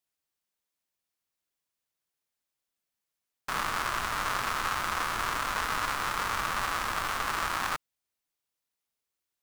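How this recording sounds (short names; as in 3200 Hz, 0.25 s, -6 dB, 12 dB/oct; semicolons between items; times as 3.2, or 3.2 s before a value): noise floor -87 dBFS; spectral tilt -2.5 dB/oct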